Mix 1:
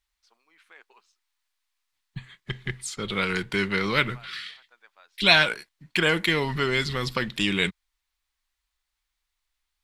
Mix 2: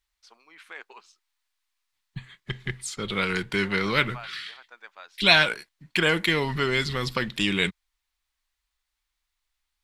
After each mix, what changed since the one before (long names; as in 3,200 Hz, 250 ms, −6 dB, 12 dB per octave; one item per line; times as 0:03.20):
first voice +10.0 dB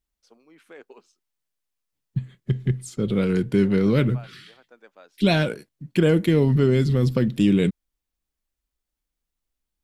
master: add octave-band graphic EQ 125/250/500/1,000/2,000/4,000/8,000 Hz +11/+9/+6/−8/−8/−8/−3 dB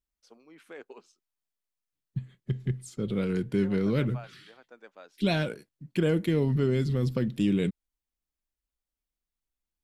second voice −7.0 dB